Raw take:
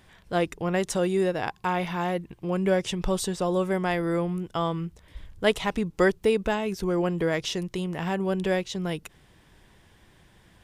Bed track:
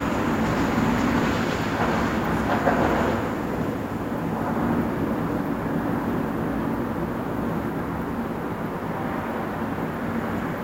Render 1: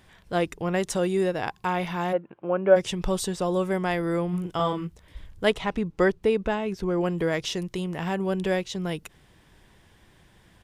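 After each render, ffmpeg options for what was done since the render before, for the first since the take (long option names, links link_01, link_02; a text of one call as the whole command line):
ffmpeg -i in.wav -filter_complex "[0:a]asplit=3[link_01][link_02][link_03];[link_01]afade=type=out:start_time=2.12:duration=0.02[link_04];[link_02]highpass=250,equalizer=frequency=580:width_type=q:width=4:gain=9,equalizer=frequency=820:width_type=q:width=4:gain=4,equalizer=frequency=1400:width_type=q:width=4:gain=8,equalizer=frequency=2000:width_type=q:width=4:gain=-7,lowpass=frequency=2500:width=0.5412,lowpass=frequency=2500:width=1.3066,afade=type=in:start_time=2.12:duration=0.02,afade=type=out:start_time=2.75:duration=0.02[link_05];[link_03]afade=type=in:start_time=2.75:duration=0.02[link_06];[link_04][link_05][link_06]amix=inputs=3:normalize=0,asplit=3[link_07][link_08][link_09];[link_07]afade=type=out:start_time=4.32:duration=0.02[link_10];[link_08]asplit=2[link_11][link_12];[link_12]adelay=40,volume=-3dB[link_13];[link_11][link_13]amix=inputs=2:normalize=0,afade=type=in:start_time=4.32:duration=0.02,afade=type=out:start_time=4.86:duration=0.02[link_14];[link_09]afade=type=in:start_time=4.86:duration=0.02[link_15];[link_10][link_14][link_15]amix=inputs=3:normalize=0,asettb=1/sr,asplit=3[link_16][link_17][link_18];[link_16]atrim=end=5.504[link_19];[link_17]atrim=start=5.5:end=7.01,asetpts=PTS-STARTPTS,afade=type=in:duration=0.004:curve=qsin,afade=type=out:start_time=1.506:duration=0.004:curve=qsin,lowpass=frequency=3000:poles=1[link_20];[link_18]atrim=start=7.006[link_21];[link_19][link_20]acrossfade=duration=0.004:curve1=hsin:curve2=qsin[link_22];[link_22][link_21]acrossfade=duration=0.004:curve1=qsin:curve2=hsin" out.wav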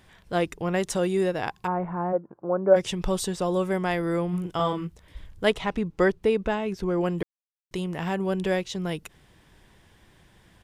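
ffmpeg -i in.wav -filter_complex "[0:a]asplit=3[link_01][link_02][link_03];[link_01]afade=type=out:start_time=1.66:duration=0.02[link_04];[link_02]lowpass=frequency=1300:width=0.5412,lowpass=frequency=1300:width=1.3066,afade=type=in:start_time=1.66:duration=0.02,afade=type=out:start_time=2.73:duration=0.02[link_05];[link_03]afade=type=in:start_time=2.73:duration=0.02[link_06];[link_04][link_05][link_06]amix=inputs=3:normalize=0,asplit=3[link_07][link_08][link_09];[link_07]atrim=end=7.23,asetpts=PTS-STARTPTS,afade=type=out:start_time=7.226:duration=0.004:curve=hsin[link_10];[link_08]atrim=start=7.23:end=7.71,asetpts=PTS-STARTPTS,volume=0[link_11];[link_09]atrim=start=7.71,asetpts=PTS-STARTPTS,afade=type=in:duration=0.004:curve=hsin[link_12];[link_10][link_11][link_12]concat=n=3:v=0:a=1" out.wav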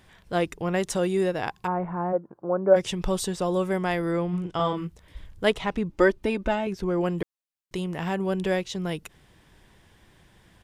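ffmpeg -i in.wav -filter_complex "[0:a]asettb=1/sr,asplit=3[link_01][link_02][link_03];[link_01]atrim=end=4.114[link_04];[link_02]atrim=start=4.11:end=4.77,asetpts=PTS-STARTPTS,afade=type=in:duration=0.004:curve=qsin,afade=type=out:start_time=0.656:duration=0.004:curve=qsin,lowpass=6600[link_05];[link_03]atrim=start=4.766[link_06];[link_04][link_05]acrossfade=duration=0.004:curve1=hsin:curve2=qsin[link_07];[link_07][link_06]acrossfade=duration=0.004:curve1=qsin:curve2=hsin,asettb=1/sr,asplit=3[link_08][link_09][link_10];[link_08]atrim=end=5.894[link_11];[link_09]atrim=start=5.89:end=6.67,asetpts=PTS-STARTPTS,afade=type=in:duration=0.004:curve=qsin,afade=type=out:start_time=0.776:duration=0.004:curve=qsin,aecho=1:1:3.3:0.65,atrim=end_sample=34398[link_12];[link_10]atrim=start=6.666[link_13];[link_11][link_12]acrossfade=duration=0.004:curve1=hsin:curve2=qsin[link_14];[link_14][link_13]acrossfade=duration=0.004:curve1=qsin:curve2=hsin" out.wav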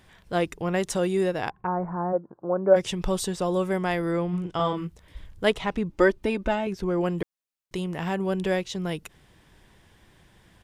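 ffmpeg -i in.wav -filter_complex "[0:a]asplit=3[link_01][link_02][link_03];[link_01]afade=type=out:start_time=1.49:duration=0.02[link_04];[link_02]lowpass=frequency=1700:width=0.5412,lowpass=frequency=1700:width=1.3066,afade=type=in:start_time=1.49:duration=0.02,afade=type=out:start_time=2.54:duration=0.02[link_05];[link_03]afade=type=in:start_time=2.54:duration=0.02[link_06];[link_04][link_05][link_06]amix=inputs=3:normalize=0" out.wav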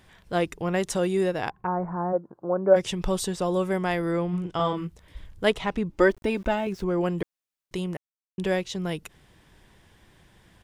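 ffmpeg -i in.wav -filter_complex "[0:a]asettb=1/sr,asplit=3[link_01][link_02][link_03];[link_01]atrim=end=6.074[link_04];[link_02]atrim=start=6.07:end=6.83,asetpts=PTS-STARTPTS,afade=type=in:duration=0.004:curve=qsin,afade=type=out:start_time=0.756:duration=0.004:curve=qsin,aeval=exprs='val(0)*gte(abs(val(0)),0.00376)':channel_layout=same[link_05];[link_03]atrim=start=6.826[link_06];[link_04][link_05]acrossfade=duration=0.004:curve1=hsin:curve2=qsin[link_07];[link_07][link_06]acrossfade=duration=0.004:curve1=qsin:curve2=hsin,asplit=3[link_08][link_09][link_10];[link_08]atrim=end=7.97,asetpts=PTS-STARTPTS,afade=type=out:start_time=7.966:duration=0.004:curve=hsin[link_11];[link_09]atrim=start=7.97:end=8.38,asetpts=PTS-STARTPTS,volume=0[link_12];[link_10]atrim=start=8.38,asetpts=PTS-STARTPTS,afade=type=in:duration=0.004:curve=hsin[link_13];[link_11][link_12][link_13]concat=n=3:v=0:a=1" out.wav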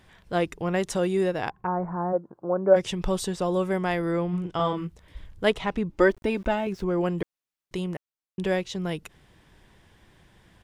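ffmpeg -i in.wav -af "highshelf=frequency=5900:gain=-4" out.wav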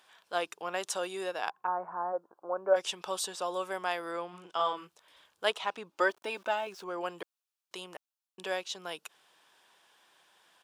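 ffmpeg -i in.wav -af "highpass=830,equalizer=frequency=2000:width=3.9:gain=-9.5" out.wav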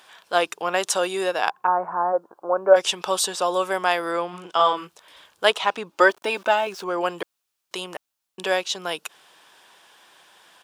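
ffmpeg -i in.wav -af "volume=11.5dB,alimiter=limit=-2dB:level=0:latency=1" out.wav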